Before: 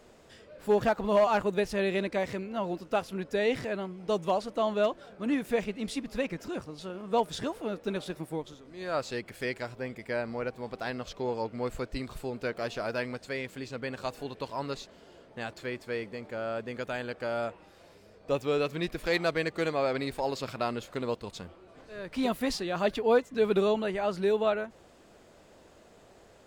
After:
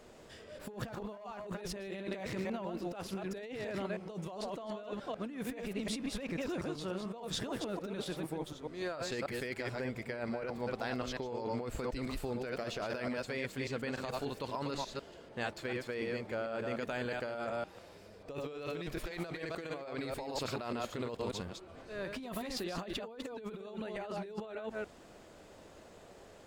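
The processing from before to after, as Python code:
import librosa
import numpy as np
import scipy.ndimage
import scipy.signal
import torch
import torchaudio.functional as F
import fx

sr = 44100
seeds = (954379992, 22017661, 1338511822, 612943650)

y = fx.reverse_delay(x, sr, ms=147, wet_db=-5.5)
y = fx.over_compress(y, sr, threshold_db=-35.0, ratio=-1.0)
y = F.gain(torch.from_numpy(y), -4.5).numpy()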